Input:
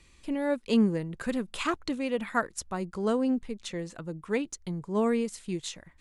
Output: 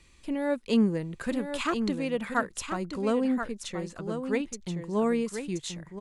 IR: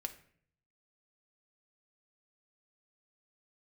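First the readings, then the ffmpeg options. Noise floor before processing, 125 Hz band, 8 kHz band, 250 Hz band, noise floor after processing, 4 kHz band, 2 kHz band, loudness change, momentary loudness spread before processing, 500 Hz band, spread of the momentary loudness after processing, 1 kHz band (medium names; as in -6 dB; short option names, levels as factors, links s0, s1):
-59 dBFS, +0.5 dB, +0.5 dB, +0.5 dB, -56 dBFS, +0.5 dB, +0.5 dB, +0.5 dB, 11 LU, +0.5 dB, 9 LU, +0.5 dB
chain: -af "aecho=1:1:1029:0.422"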